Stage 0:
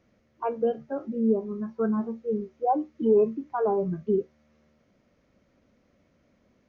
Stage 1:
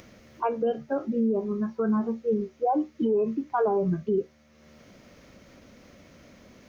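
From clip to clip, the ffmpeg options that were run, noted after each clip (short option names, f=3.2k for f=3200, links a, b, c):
-af "alimiter=limit=-22dB:level=0:latency=1:release=67,highshelf=f=2.3k:g=8,acompressor=mode=upward:threshold=-46dB:ratio=2.5,volume=4dB"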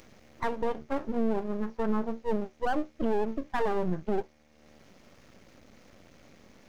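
-af "aeval=exprs='max(val(0),0)':c=same"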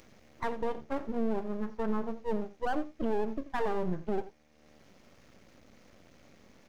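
-af "aecho=1:1:86:0.168,volume=-3dB"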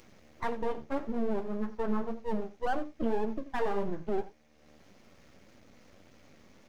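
-af "flanger=delay=8:depth=5.6:regen=-36:speed=1.8:shape=triangular,volume=4dB"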